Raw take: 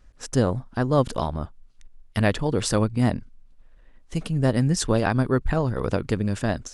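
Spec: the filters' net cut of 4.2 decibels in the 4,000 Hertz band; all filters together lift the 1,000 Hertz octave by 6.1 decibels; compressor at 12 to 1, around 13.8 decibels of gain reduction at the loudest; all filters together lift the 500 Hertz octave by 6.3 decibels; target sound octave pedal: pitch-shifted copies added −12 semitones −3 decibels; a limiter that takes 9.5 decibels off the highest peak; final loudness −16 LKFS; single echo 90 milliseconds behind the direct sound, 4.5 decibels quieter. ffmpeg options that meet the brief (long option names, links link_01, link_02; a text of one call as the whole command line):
ffmpeg -i in.wav -filter_complex "[0:a]equalizer=frequency=500:width_type=o:gain=6,equalizer=frequency=1000:width_type=o:gain=6,equalizer=frequency=4000:width_type=o:gain=-6,acompressor=threshold=-25dB:ratio=12,alimiter=limit=-23.5dB:level=0:latency=1,aecho=1:1:90:0.596,asplit=2[link_01][link_02];[link_02]asetrate=22050,aresample=44100,atempo=2,volume=-3dB[link_03];[link_01][link_03]amix=inputs=2:normalize=0,volume=16dB" out.wav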